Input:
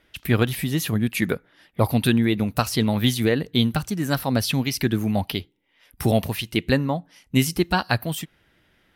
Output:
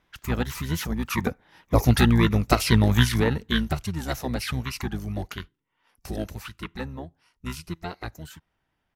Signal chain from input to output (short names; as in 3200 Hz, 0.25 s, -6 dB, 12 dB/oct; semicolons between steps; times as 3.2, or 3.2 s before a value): Doppler pass-by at 2.33, 14 m/s, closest 12 m; dynamic EQ 290 Hz, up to -4 dB, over -47 dBFS, Q 3.4; harmoniser -12 st 0 dB